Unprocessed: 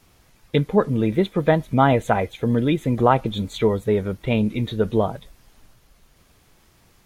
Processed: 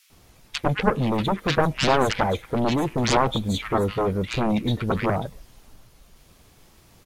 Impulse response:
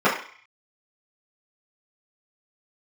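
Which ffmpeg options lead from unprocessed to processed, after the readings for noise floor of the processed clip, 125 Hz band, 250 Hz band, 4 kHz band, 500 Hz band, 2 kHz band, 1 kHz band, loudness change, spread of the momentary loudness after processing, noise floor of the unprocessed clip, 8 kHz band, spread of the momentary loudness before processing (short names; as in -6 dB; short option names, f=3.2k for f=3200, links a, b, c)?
-55 dBFS, -3.0 dB, -3.0 dB, +5.5 dB, -4.0 dB, +2.0 dB, -1.0 dB, -2.5 dB, 6 LU, -58 dBFS, n/a, 6 LU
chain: -filter_complex "[0:a]aeval=exprs='0.708*(cos(1*acos(clip(val(0)/0.708,-1,1)))-cos(1*PI/2))+0.355*(cos(7*acos(clip(val(0)/0.708,-1,1)))-cos(7*PI/2))':c=same,acrossover=split=1700[a][b];[a]adelay=100[c];[c][b]amix=inputs=2:normalize=0,volume=-5dB"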